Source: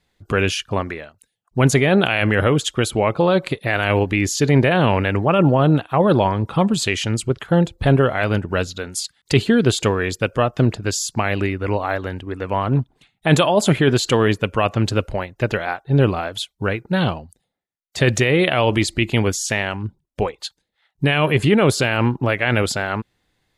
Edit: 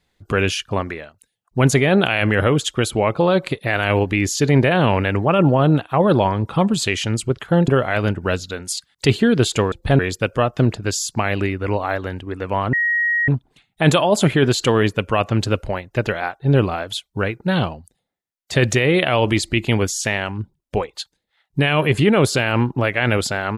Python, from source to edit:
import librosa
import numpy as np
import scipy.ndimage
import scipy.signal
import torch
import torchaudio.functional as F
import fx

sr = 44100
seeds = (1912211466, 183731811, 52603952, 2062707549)

y = fx.edit(x, sr, fx.move(start_s=7.68, length_s=0.27, to_s=9.99),
    fx.insert_tone(at_s=12.73, length_s=0.55, hz=1890.0, db=-15.5), tone=tone)